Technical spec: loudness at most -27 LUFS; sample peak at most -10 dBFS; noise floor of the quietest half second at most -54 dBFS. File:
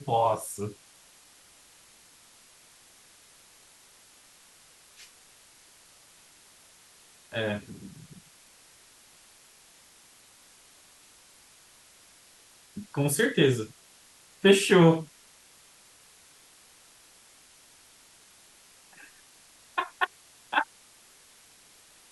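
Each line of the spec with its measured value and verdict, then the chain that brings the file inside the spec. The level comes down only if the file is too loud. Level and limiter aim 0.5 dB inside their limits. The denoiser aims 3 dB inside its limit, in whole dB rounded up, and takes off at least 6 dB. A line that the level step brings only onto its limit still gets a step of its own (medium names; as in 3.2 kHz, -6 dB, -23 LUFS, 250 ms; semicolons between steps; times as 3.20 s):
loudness -26.0 LUFS: fail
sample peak -7.0 dBFS: fail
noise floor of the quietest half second -57 dBFS: pass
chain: trim -1.5 dB; peak limiter -10.5 dBFS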